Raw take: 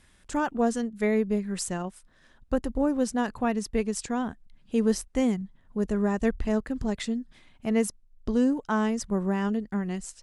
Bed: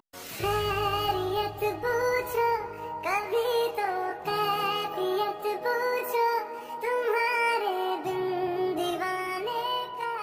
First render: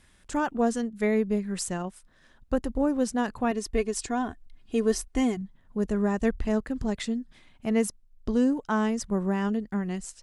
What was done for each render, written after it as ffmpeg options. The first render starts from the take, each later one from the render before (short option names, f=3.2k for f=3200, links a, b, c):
-filter_complex "[0:a]asettb=1/sr,asplit=3[a][b][c];[a]atrim=end=3.514[d];[b]atrim=start=3.51:end=5.37,asetpts=PTS-STARTPTS,afade=t=in:d=0.004:c=qsin,afade=t=out:st=1.856:d=0.004:c=qsin,aecho=1:1:2.8:0.63,atrim=end_sample=82026[e];[c]atrim=start=5.366[f];[d][e]acrossfade=d=0.004:c1=hsin:c2=qsin[g];[g][f]acrossfade=d=0.004:c1=qsin:c2=hsin"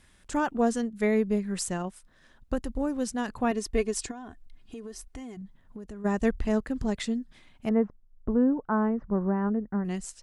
-filter_complex "[0:a]asettb=1/sr,asplit=3[a][b][c];[a]atrim=end=2.534[d];[b]atrim=start=2.53:end=3.29,asetpts=PTS-STARTPTS,afade=t=in:d=0.004:c=qsin,afade=t=out:st=0.756:d=0.004:c=qsin,equalizer=f=520:w=0.36:g=-5[e];[c]atrim=start=3.286[f];[d][e]acrossfade=d=0.004:c1=hsin:c2=qsin[g];[g][f]acrossfade=d=0.004:c1=qsin:c2=hsin,asplit=3[h][i][j];[h]afade=t=out:st=4.1:d=0.02[k];[i]acompressor=threshold=-37dB:ratio=10:attack=3.2:release=140:knee=1:detection=peak,afade=t=in:st=4.1:d=0.02,afade=t=out:st=6.04:d=0.02[l];[j]afade=t=in:st=6.04:d=0.02[m];[k][l][m]amix=inputs=3:normalize=0,asettb=1/sr,asplit=3[n][o][p];[n]atrim=end=7.694[q];[o]atrim=start=7.69:end=9.85,asetpts=PTS-STARTPTS,afade=t=in:d=0.004:c=qsin,afade=t=out:st=2.156:d=0.004:c=qsin,lowpass=f=1.5k:w=0.5412,lowpass=f=1.5k:w=1.3066[r];[p]atrim=start=9.846[s];[q][r]acrossfade=d=0.004:c1=hsin:c2=qsin[t];[t][s]acrossfade=d=0.004:c1=qsin:c2=hsin"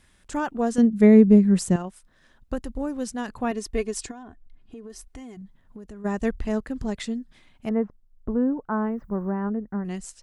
-filter_complex "[0:a]asettb=1/sr,asplit=3[a][b][c];[a]atrim=end=0.784[d];[b]atrim=start=0.78:end=1.76,asetpts=PTS-STARTPTS,afade=t=in:d=0.004:c=qsin,afade=t=out:st=0.976:d=0.004:c=qsin,equalizer=f=190:w=0.43:g=14[e];[c]atrim=start=1.756[f];[d][e]acrossfade=d=0.004:c1=hsin:c2=qsin[g];[g][f]acrossfade=d=0.004:c1=qsin:c2=hsin,asettb=1/sr,asplit=3[h][i][j];[h]atrim=end=4.234[k];[i]atrim=start=4.23:end=4.9,asetpts=PTS-STARTPTS,afade=t=in:d=0.004:c=qsin,afade=t=out:st=0.666:d=0.004:c=qsin,highshelf=f=2.7k:g=-11.5[l];[j]atrim=start=4.896[m];[k][l]acrossfade=d=0.004:c1=hsin:c2=qsin[n];[n][m]acrossfade=d=0.004:c1=qsin:c2=hsin,asplit=3[o][p][q];[o]afade=t=out:st=8.85:d=0.02[r];[p]aemphasis=mode=production:type=75fm,afade=t=in:st=8.85:d=0.02,afade=t=out:st=9.31:d=0.02[s];[q]afade=t=in:st=9.31:d=0.02[t];[r][s][t]amix=inputs=3:normalize=0"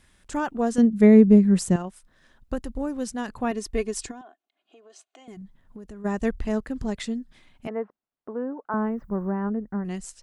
-filter_complex "[0:a]asettb=1/sr,asplit=3[a][b][c];[a]atrim=end=4.214[d];[b]atrim=start=4.21:end=5.28,asetpts=PTS-STARTPTS,afade=t=in:d=0.004:c=qsin,afade=t=out:st=1.066:d=0.004:c=qsin,highpass=f=410:w=0.5412,highpass=f=410:w=1.3066,equalizer=f=450:t=q:w=4:g=-9,equalizer=f=650:t=q:w=4:g=6,equalizer=f=970:t=q:w=4:g=-6,equalizer=f=1.9k:t=q:w=4:g=-8,equalizer=f=3k:t=q:w=4:g=3,equalizer=f=5.3k:t=q:w=4:g=-10,lowpass=f=6.9k:w=0.5412,lowpass=f=6.9k:w=1.3066[e];[c]atrim=start=5.276[f];[d][e]acrossfade=d=0.004:c1=hsin:c2=qsin[g];[g][f]acrossfade=d=0.004:c1=qsin:c2=hsin,asettb=1/sr,asplit=3[h][i][j];[h]atrim=end=7.674[k];[i]atrim=start=7.67:end=8.74,asetpts=PTS-STARTPTS,afade=t=in:d=0.004:c=qsin,afade=t=out:st=1.066:d=0.004:c=qsin,highpass=440,lowpass=3.3k[l];[j]atrim=start=8.736[m];[k][l]acrossfade=d=0.004:c1=hsin:c2=qsin[n];[n][m]acrossfade=d=0.004:c1=qsin:c2=hsin"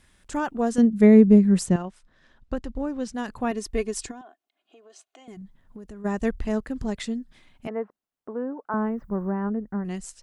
-filter_complex "[0:a]asettb=1/sr,asplit=3[a][b][c];[a]atrim=end=1.664[d];[b]atrim=start=1.66:end=3.14,asetpts=PTS-STARTPTS,afade=t=in:d=0.004:c=qsin,afade=t=out:st=1.476:d=0.004:c=qsin,lowpass=5.6k[e];[c]atrim=start=3.136[f];[d][e]acrossfade=d=0.004:c1=hsin:c2=qsin[g];[g][f]acrossfade=d=0.004:c1=qsin:c2=hsin"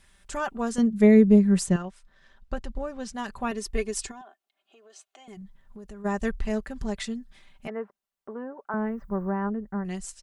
-af "equalizer=f=260:w=0.78:g=-6.5,aecho=1:1:5.1:0.51"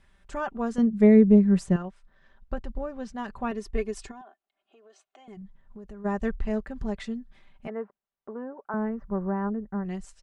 -af "lowpass=f=1.6k:p=1"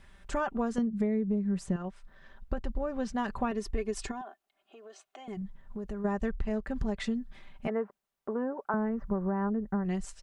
-filter_complex "[0:a]asplit=2[a][b];[b]alimiter=limit=-19dB:level=0:latency=1:release=79,volume=-1dB[c];[a][c]amix=inputs=2:normalize=0,acompressor=threshold=-27dB:ratio=8"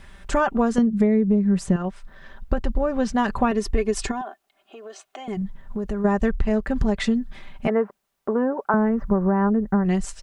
-af "volume=10.5dB"